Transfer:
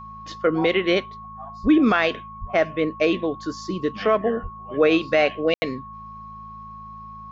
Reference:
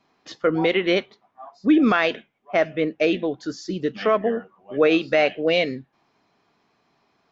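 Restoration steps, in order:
hum removal 54 Hz, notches 4
notch filter 1,100 Hz, Q 30
high-pass at the plosives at 0:01.62/0:02.40/0:04.42
ambience match 0:05.54–0:05.62

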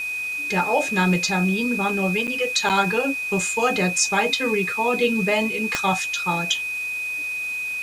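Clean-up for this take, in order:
click removal
notch filter 2,500 Hz, Q 30
repair the gap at 0:02.27/0:02.69, 7.8 ms
broadband denoise 30 dB, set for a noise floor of −28 dBFS

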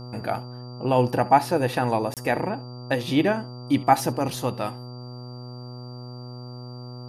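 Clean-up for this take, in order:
hum removal 123.5 Hz, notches 11
notch filter 4,700 Hz, Q 30
repair the gap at 0:02.14, 27 ms
echo removal 70 ms −21 dB

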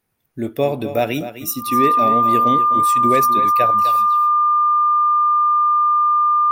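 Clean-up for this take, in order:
clipped peaks rebuilt −6 dBFS
notch filter 1,200 Hz, Q 30
echo removal 254 ms −12 dB

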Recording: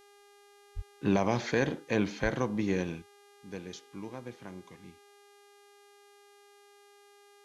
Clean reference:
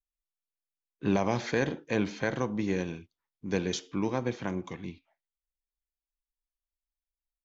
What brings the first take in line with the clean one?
hum removal 405.8 Hz, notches 31
0:00.75–0:00.87: high-pass filter 140 Hz 24 dB per octave
0:02.22–0:02.34: high-pass filter 140 Hz 24 dB per octave
level 0 dB, from 0:03.02 +12 dB

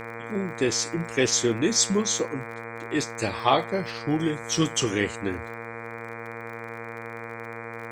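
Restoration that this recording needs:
click removal
hum removal 114.6 Hz, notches 21
notch filter 470 Hz, Q 30

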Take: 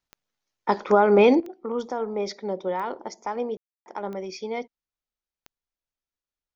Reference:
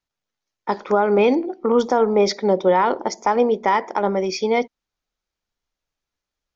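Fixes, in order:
click removal
ambience match 0:03.57–0:03.86
level correction +11.5 dB, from 0:01.40

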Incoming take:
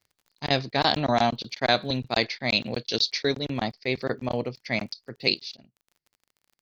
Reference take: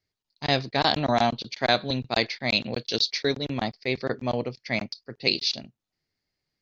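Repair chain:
click removal
repair the gap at 0:00.49/0:01.60/0:04.29/0:05.57, 11 ms
level 0 dB, from 0:05.34 +12 dB

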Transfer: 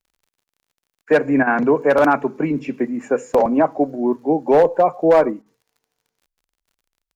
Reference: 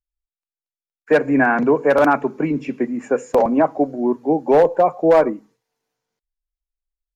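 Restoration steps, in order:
click removal
repair the gap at 0:01.43/0:05.42, 39 ms

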